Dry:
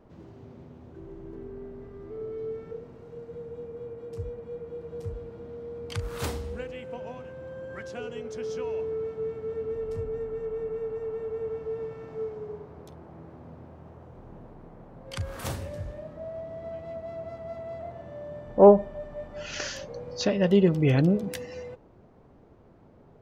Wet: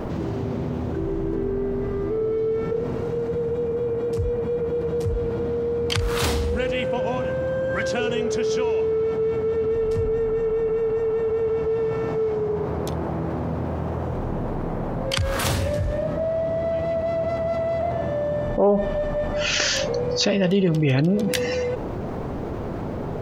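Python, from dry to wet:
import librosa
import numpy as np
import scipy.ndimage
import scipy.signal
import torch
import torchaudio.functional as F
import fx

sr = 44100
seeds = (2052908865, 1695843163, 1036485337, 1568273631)

y = fx.dynamic_eq(x, sr, hz=3600.0, q=0.7, threshold_db=-49.0, ratio=4.0, max_db=5)
y = fx.env_flatten(y, sr, amount_pct=70)
y = F.gain(torch.from_numpy(y), -5.5).numpy()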